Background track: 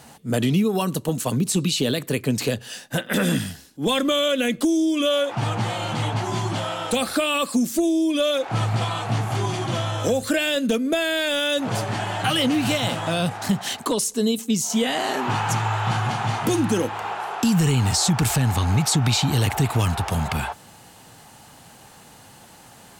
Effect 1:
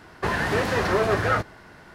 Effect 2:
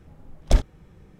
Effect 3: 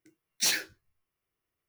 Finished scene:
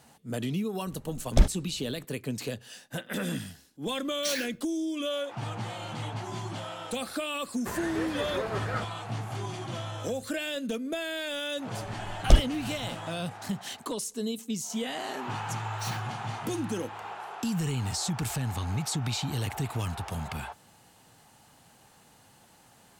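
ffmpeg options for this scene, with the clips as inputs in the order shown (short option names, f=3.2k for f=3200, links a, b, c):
-filter_complex "[2:a]asplit=2[a][b];[3:a]asplit=2[c][d];[0:a]volume=-11dB[e];[c]acompressor=threshold=-27dB:ratio=6:attack=3.2:release=140:knee=1:detection=peak[f];[1:a]bandreject=f=5.9k:w=12[g];[a]atrim=end=1.19,asetpts=PTS-STARTPTS,volume=-2dB,afade=t=in:d=0.004:c=hsin,afade=t=out:st=1.186:d=0.004:c=hsin,adelay=860[h];[f]atrim=end=1.68,asetpts=PTS-STARTPTS,volume=-0.5dB,afade=t=in:d=0.004:c=hsin,afade=t=out:st=1.676:d=0.004:c=hsin,adelay=3830[i];[g]atrim=end=1.94,asetpts=PTS-STARTPTS,volume=-11.5dB,afade=t=in:d=0.004:c=hsin,afade=t=out:st=1.936:d=0.004:c=hsin,adelay=7430[j];[b]atrim=end=1.19,asetpts=PTS-STARTPTS,afade=t=in:d=0.004:c=hsin,afade=t=out:st=1.186:d=0.004:c=hsin,adelay=11790[k];[d]atrim=end=1.68,asetpts=PTS-STARTPTS,volume=-13dB,afade=t=in:d=0.004:c=hsin,afade=t=out:st=1.676:d=0.004:c=hsin,adelay=15390[l];[e][h][i][j][k][l]amix=inputs=6:normalize=0"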